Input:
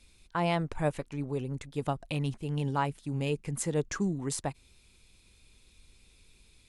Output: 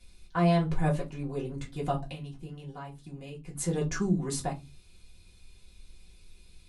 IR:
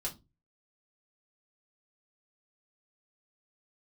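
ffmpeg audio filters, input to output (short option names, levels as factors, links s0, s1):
-filter_complex "[0:a]asettb=1/sr,asplit=3[s0][s1][s2];[s0]atrim=end=2.084[s3];[s1]atrim=start=2.08:end=3.58,asetpts=PTS-STARTPTS,afade=t=in:d=0.004:c=qsin,afade=t=out:st=1.496:d=0.004:c=qsin,acompressor=threshold=0.00891:ratio=4[s4];[s2]atrim=start=3.576[s5];[s3][s4]acrossfade=d=0.004:c1=hsin:c2=qsin[s6];[s6][s5]acrossfade=d=0.004:c1=qsin:c2=hsin[s7];[1:a]atrim=start_sample=2205[s8];[s7][s8]afir=irnorm=-1:irlink=0"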